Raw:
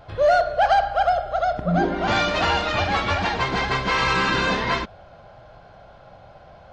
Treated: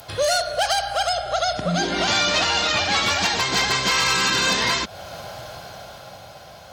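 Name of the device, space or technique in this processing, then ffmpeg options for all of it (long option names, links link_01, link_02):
FM broadcast chain: -filter_complex "[0:a]highpass=71,dynaudnorm=framelen=210:gausssize=13:maxgain=11.5dB,acrossover=split=120|2100[link_01][link_02][link_03];[link_01]acompressor=threshold=-38dB:ratio=4[link_04];[link_02]acompressor=threshold=-22dB:ratio=4[link_05];[link_03]acompressor=threshold=-31dB:ratio=4[link_06];[link_04][link_05][link_06]amix=inputs=3:normalize=0,aemphasis=mode=production:type=75fm,alimiter=limit=-16dB:level=0:latency=1:release=465,asoftclip=type=hard:threshold=-17.5dB,lowpass=frequency=15000:width=0.5412,lowpass=frequency=15000:width=1.3066,aemphasis=mode=production:type=75fm,asettb=1/sr,asplit=3[link_07][link_08][link_09];[link_07]atrim=end=1.134[link_10];[link_08]atrim=start=1.13:end=3.03,asetpts=PTS-STARTPTS,afade=type=in:duration=0.004:curve=qsin,afade=type=out:start_time=1.896:duration=0.004:curve=qsin,lowpass=6600[link_11];[link_09]atrim=start=3.026[link_12];[link_10][link_11]acrossfade=duration=0.004:curve1=hsin:curve2=qsin[link_13];[link_13][link_12]acrossfade=duration=0.004:curve1=qsin:curve2=hsin,volume=3.5dB"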